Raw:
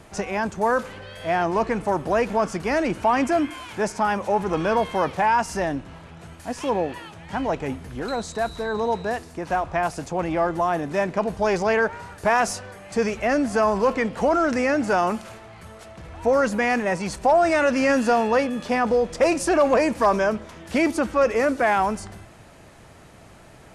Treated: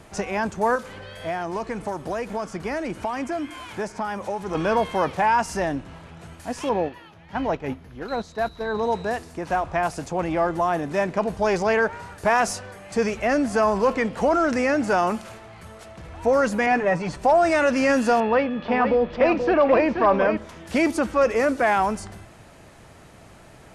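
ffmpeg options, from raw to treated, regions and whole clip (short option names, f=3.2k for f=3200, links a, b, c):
-filter_complex "[0:a]asettb=1/sr,asplit=3[a][b][c];[a]atrim=end=0.754[d];[b]atrim=start=0.75:end=4.55,asetpts=PTS-STARTPTS,afade=t=in:d=0.004:c=qsin,afade=t=out:st=3.796:d=0.004:c=qsin,bandreject=f=2.7k:w=24,acrossover=split=3100|7300[e][f][g];[e]acompressor=threshold=-26dB:ratio=4[h];[f]acompressor=threshold=-49dB:ratio=4[i];[g]acompressor=threshold=-54dB:ratio=4[j];[h][i][j]amix=inputs=3:normalize=0[k];[c]atrim=start=4.546[l];[d][k]acrossfade=d=0.004:c1=hsin:c2=qsin[m];[m][l]acrossfade=d=0.004:c1=qsin:c2=hsin,asettb=1/sr,asplit=3[n][o][p];[n]atrim=end=6.694[q];[o]atrim=start=6.69:end=8.83,asetpts=PTS-STARTPTS,afade=t=in:d=0.004:c=qsin,afade=t=out:st=2.136:d=0.004:c=qsin,agate=range=-7dB:threshold=-29dB:ratio=16:release=100:detection=peak,equalizer=f=8.3k:w=1.9:g=-13[r];[p]atrim=start=8.826[s];[q][r]acrossfade=d=0.004:c1=hsin:c2=qsin[t];[t][s]acrossfade=d=0.004:c1=qsin:c2=hsin,asettb=1/sr,asplit=3[u][v][w];[u]atrim=end=16.664[x];[v]atrim=start=16.66:end=17.19,asetpts=PTS-STARTPTS,afade=t=in:d=0.004:c=qsin,afade=t=out:st=0.526:d=0.004:c=qsin,aemphasis=mode=reproduction:type=75fm,aecho=1:1:6.9:0.67,atrim=end_sample=23373[y];[w]atrim=start=17.186[z];[x][y]acrossfade=d=0.004:c1=hsin:c2=qsin[aa];[aa][z]acrossfade=d=0.004:c1=qsin:c2=hsin,asettb=1/sr,asplit=3[ab][ac][ad];[ab]atrim=end=18.204[ae];[ac]atrim=start=18.2:end=20.37,asetpts=PTS-STARTPTS,afade=t=in:d=0.004:c=qsin,afade=t=out:st=2.166:d=0.004:c=qsin,lowpass=f=3.6k:w=0.5412,lowpass=f=3.6k:w=1.3066,aecho=1:1:480:0.447,atrim=end_sample=95697[af];[ad]atrim=start=20.366[ag];[ae][af]acrossfade=d=0.004:c1=hsin:c2=qsin[ah];[ah][ag]acrossfade=d=0.004:c1=qsin:c2=hsin"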